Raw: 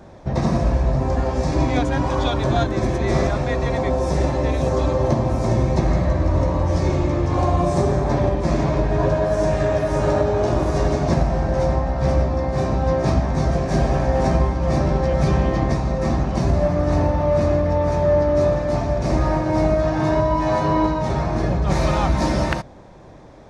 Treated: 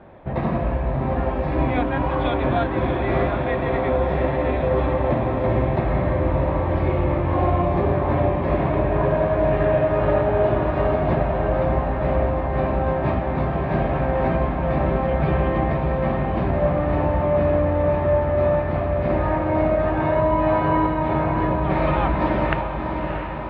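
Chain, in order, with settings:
Butterworth low-pass 3,100 Hz 36 dB per octave
low-shelf EQ 290 Hz −5.5 dB
feedback delay with all-pass diffusion 655 ms, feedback 67%, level −6.5 dB

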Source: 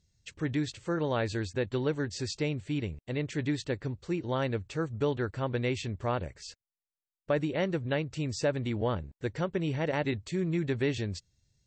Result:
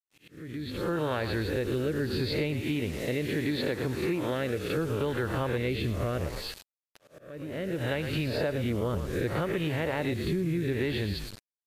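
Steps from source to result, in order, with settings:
peak hold with a rise ahead of every peak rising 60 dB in 0.56 s
echo with shifted repeats 112 ms, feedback 34%, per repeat −47 Hz, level −12 dB
in parallel at +1 dB: brickwall limiter −24.5 dBFS, peak gain reduction 9 dB
0:02.61–0:04.77: on the sum: high-pass filter 190 Hz 6 dB per octave
rotating-speaker cabinet horn 0.7 Hz
elliptic low-pass filter 4,300 Hz, stop band 40 dB
bit reduction 8 bits
downward compressor 6 to 1, threshold −33 dBFS, peak gain reduction 12 dB
volume swells 707 ms
level +7 dB
MP3 80 kbit/s 32,000 Hz

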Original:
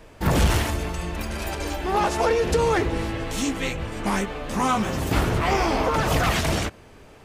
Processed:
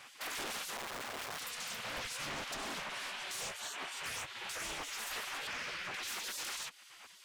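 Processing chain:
0:00.76–0:01.40: each half-wave held at its own peak
0:05.47–0:06.03: high-shelf EQ 3,600 Hz −11.5 dB
gate on every frequency bin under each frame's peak −20 dB weak
downward compressor 3 to 1, threshold −41 dBFS, peak gain reduction 12 dB
soft clipping −39.5 dBFS, distortion −12 dB
highs frequency-modulated by the lows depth 0.5 ms
level +4 dB

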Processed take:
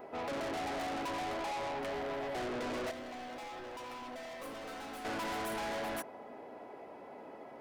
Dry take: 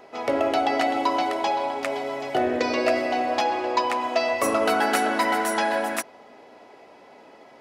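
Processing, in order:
parametric band 5,100 Hz −14.5 dB 2.3 octaves
hard clipping −34.5 dBFS, distortion −4 dB
0:02.91–0:05.05: tuned comb filter 260 Hz, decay 0.17 s, harmonics all, mix 80%
soft clipping −36 dBFS, distortion −20 dB
level +1 dB

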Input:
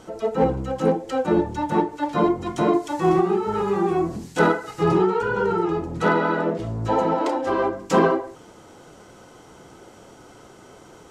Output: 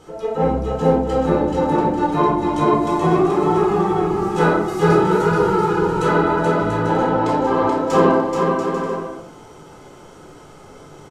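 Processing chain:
0:04.68–0:06.06: high-shelf EQ 5,100 Hz +10.5 dB
bouncing-ball delay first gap 430 ms, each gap 0.6×, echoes 5
rectangular room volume 750 cubic metres, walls furnished, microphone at 4.1 metres
level −4 dB

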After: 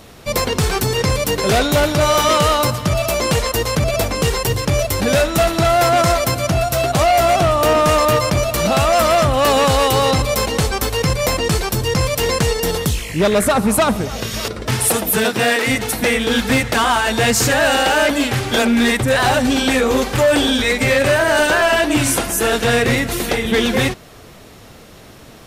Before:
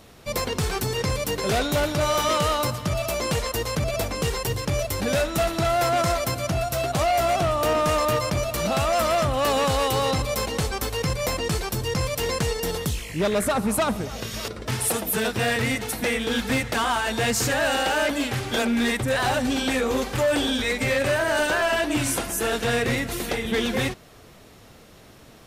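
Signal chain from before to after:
0:15.23–0:15.66: high-pass filter 81 Hz → 340 Hz 24 dB per octave
level +8 dB

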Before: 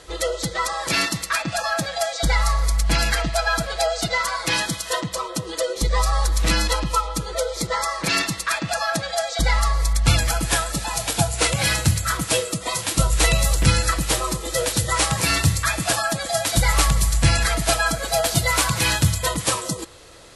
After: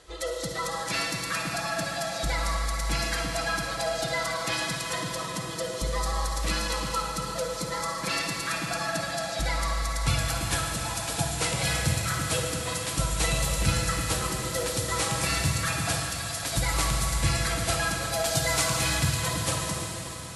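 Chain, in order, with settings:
0:15.96–0:16.43: Bessel high-pass filter 2,600 Hz, order 2
0:18.21–0:18.78: dynamic equaliser 6,300 Hz, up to +5 dB, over −35 dBFS, Q 1.1
convolution reverb RT60 4.3 s, pre-delay 48 ms, DRR 0.5 dB
level −9 dB

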